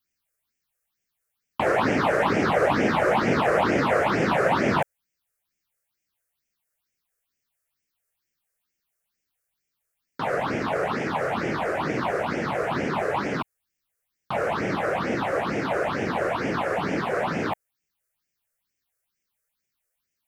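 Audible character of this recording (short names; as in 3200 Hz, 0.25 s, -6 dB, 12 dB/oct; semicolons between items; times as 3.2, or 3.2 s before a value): phasing stages 6, 2.2 Hz, lowest notch 230–1100 Hz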